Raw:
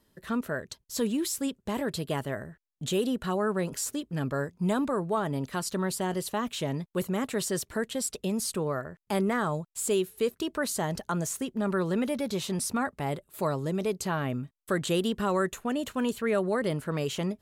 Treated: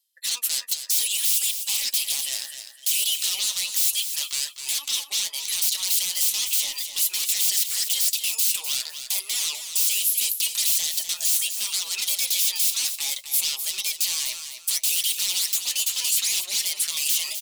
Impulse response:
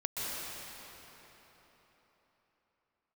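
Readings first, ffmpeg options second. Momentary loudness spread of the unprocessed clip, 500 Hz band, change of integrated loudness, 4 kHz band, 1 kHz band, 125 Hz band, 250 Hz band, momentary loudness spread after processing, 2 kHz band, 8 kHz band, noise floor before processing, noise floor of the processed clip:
5 LU, under -25 dB, +8.5 dB, +16.0 dB, -15.0 dB, under -30 dB, under -30 dB, 6 LU, +2.5 dB, +15.5 dB, -72 dBFS, -43 dBFS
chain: -filter_complex "[0:a]highpass=f=900:w=0.5412,highpass=f=900:w=1.3066,afftdn=nr=32:nf=-57,highshelf=f=5500:g=3,asplit=2[s0][s1];[s1]acompressor=threshold=0.00708:ratio=8,volume=1[s2];[s0][s2]amix=inputs=2:normalize=0,alimiter=limit=0.0668:level=0:latency=1:release=11,areverse,acompressor=mode=upward:threshold=0.00794:ratio=2.5,areverse,aeval=exprs='0.0126*(abs(mod(val(0)/0.0126+3,4)-2)-1)':c=same,flanger=delay=4.9:depth=6:regen=42:speed=0.66:shape=sinusoidal,aexciter=amount=11.6:drive=7.3:freq=2400,aecho=1:1:253|506|759:0.355|0.0852|0.0204"

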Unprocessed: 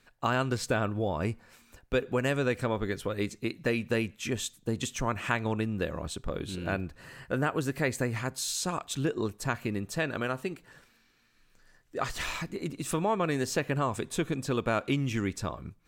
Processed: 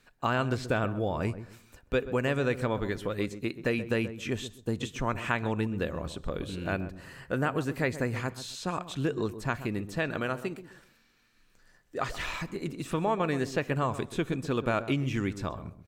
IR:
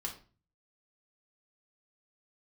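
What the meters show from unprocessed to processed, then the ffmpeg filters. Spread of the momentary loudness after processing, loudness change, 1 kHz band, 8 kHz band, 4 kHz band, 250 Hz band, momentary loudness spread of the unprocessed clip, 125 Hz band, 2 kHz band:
7 LU, 0.0 dB, 0.0 dB, -9.0 dB, -2.5 dB, +0.5 dB, 7 LU, +0.5 dB, 0.0 dB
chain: -filter_complex "[0:a]asplit=2[s0][s1];[s1]adelay=130,lowpass=f=820:p=1,volume=0.282,asplit=2[s2][s3];[s3]adelay=130,lowpass=f=820:p=1,volume=0.28,asplit=2[s4][s5];[s5]adelay=130,lowpass=f=820:p=1,volume=0.28[s6];[s0][s2][s4][s6]amix=inputs=4:normalize=0,acrossover=split=4000[s7][s8];[s8]acompressor=threshold=0.00447:ratio=4:attack=1:release=60[s9];[s7][s9]amix=inputs=2:normalize=0"

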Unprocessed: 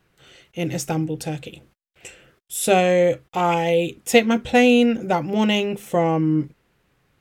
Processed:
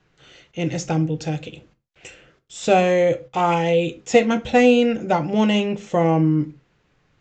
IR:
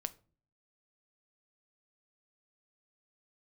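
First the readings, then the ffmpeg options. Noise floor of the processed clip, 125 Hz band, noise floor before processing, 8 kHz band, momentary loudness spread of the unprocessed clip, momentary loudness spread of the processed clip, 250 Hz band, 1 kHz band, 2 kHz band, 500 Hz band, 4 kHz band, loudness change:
-65 dBFS, +3.0 dB, -67 dBFS, -5.0 dB, 13 LU, 12 LU, +0.5 dB, +1.0 dB, -1.5 dB, +1.0 dB, -2.5 dB, +0.5 dB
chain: -filter_complex "[0:a]acrossover=split=500|1400[s0][s1][s2];[s2]asoftclip=type=tanh:threshold=0.0708[s3];[s0][s1][s3]amix=inputs=3:normalize=0,aresample=16000,aresample=44100[s4];[1:a]atrim=start_sample=2205,afade=t=out:st=0.2:d=0.01,atrim=end_sample=9261[s5];[s4][s5]afir=irnorm=-1:irlink=0,volume=1.33"

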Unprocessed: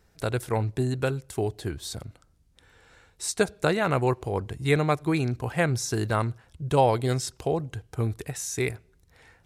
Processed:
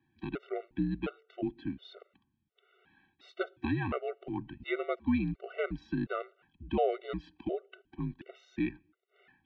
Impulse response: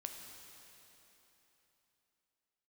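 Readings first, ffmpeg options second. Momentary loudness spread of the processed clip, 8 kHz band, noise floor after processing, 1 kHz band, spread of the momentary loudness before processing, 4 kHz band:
13 LU, under -40 dB, -79 dBFS, -11.0 dB, 10 LU, -14.0 dB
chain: -af "highpass=f=210:t=q:w=0.5412,highpass=f=210:t=q:w=1.307,lowpass=f=3200:t=q:w=0.5176,lowpass=f=3200:t=q:w=0.7071,lowpass=f=3200:t=q:w=1.932,afreqshift=-75,equalizer=f=500:t=o:w=1:g=-6,equalizer=f=1000:t=o:w=1:g=-6,equalizer=f=2000:t=o:w=1:g=-5,afftfilt=real='re*gt(sin(2*PI*1.4*pts/sr)*(1-2*mod(floor(b*sr/1024/380),2)),0)':imag='im*gt(sin(2*PI*1.4*pts/sr)*(1-2*mod(floor(b*sr/1024/380),2)),0)':win_size=1024:overlap=0.75"

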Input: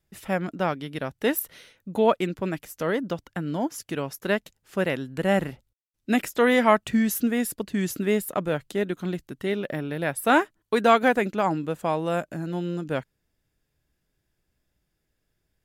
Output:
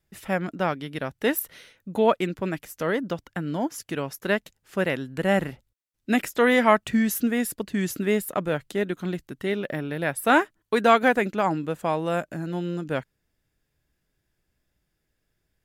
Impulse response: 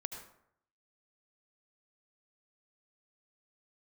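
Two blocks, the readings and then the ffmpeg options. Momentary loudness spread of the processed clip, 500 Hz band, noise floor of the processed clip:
12 LU, 0.0 dB, -77 dBFS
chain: -af "equalizer=f=1800:w=1.5:g=2"

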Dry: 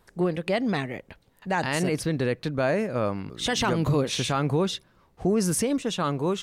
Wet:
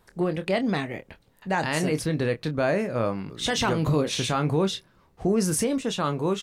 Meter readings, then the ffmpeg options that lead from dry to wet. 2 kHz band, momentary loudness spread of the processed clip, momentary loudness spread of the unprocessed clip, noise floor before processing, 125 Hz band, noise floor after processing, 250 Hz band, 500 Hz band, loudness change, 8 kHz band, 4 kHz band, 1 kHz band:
+0.5 dB, 6 LU, 6 LU, -63 dBFS, +0.5 dB, -62 dBFS, +0.5 dB, +0.5 dB, +0.5 dB, +0.5 dB, +0.5 dB, +0.5 dB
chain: -filter_complex "[0:a]asplit=2[s0][s1];[s1]adelay=26,volume=0.316[s2];[s0][s2]amix=inputs=2:normalize=0"

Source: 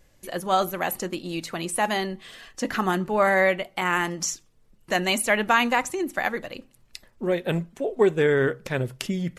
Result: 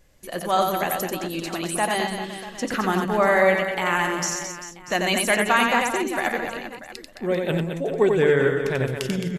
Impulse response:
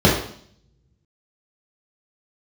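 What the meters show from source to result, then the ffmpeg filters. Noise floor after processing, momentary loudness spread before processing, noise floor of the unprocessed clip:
-43 dBFS, 13 LU, -60 dBFS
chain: -af "aecho=1:1:90|216|392.4|639.4|985.1:0.631|0.398|0.251|0.158|0.1"

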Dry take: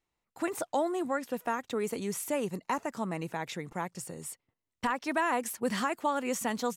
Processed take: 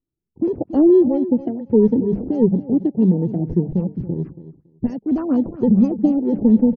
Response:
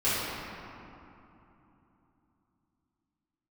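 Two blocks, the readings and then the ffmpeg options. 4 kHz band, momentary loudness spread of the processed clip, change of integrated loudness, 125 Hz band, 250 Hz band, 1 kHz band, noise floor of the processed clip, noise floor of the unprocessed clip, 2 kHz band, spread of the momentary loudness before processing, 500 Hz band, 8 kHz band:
under -15 dB, 10 LU, +14.5 dB, +21.0 dB, +20.5 dB, -6.0 dB, -81 dBFS, under -85 dBFS, under -15 dB, 8 LU, +13.5 dB, under -25 dB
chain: -filter_complex "[0:a]afftfilt=real='re*pow(10,12/40*sin(2*PI*(0.86*log(max(b,1)*sr/1024/100)/log(2)-(1.5)*(pts-256)/sr)))':imag='im*pow(10,12/40*sin(2*PI*(0.86*log(max(b,1)*sr/1024/100)/log(2)-(1.5)*(pts-256)/sr)))':win_size=1024:overlap=0.75,lowshelf=f=410:g=11.5,bandreject=f=50:t=h:w=6,bandreject=f=100:t=h:w=6,bandreject=f=150:t=h:w=6,bandreject=f=200:t=h:w=6,asplit=2[s0][s1];[s1]volume=9.44,asoftclip=hard,volume=0.106,volume=0.355[s2];[s0][s2]amix=inputs=2:normalize=0,acrusher=samples=12:mix=1:aa=0.000001,firequalizer=gain_entry='entry(390,0);entry(690,-17);entry(4200,-18);entry(9700,3)':delay=0.05:min_phase=1,afwtdn=0.0251,aecho=1:1:279|558:0.188|0.0301,afftfilt=real='re*lt(b*sr/1024,870*pow(6700/870,0.5+0.5*sin(2*PI*4.3*pts/sr)))':imag='im*lt(b*sr/1024,870*pow(6700/870,0.5+0.5*sin(2*PI*4.3*pts/sr)))':win_size=1024:overlap=0.75,volume=2.66"

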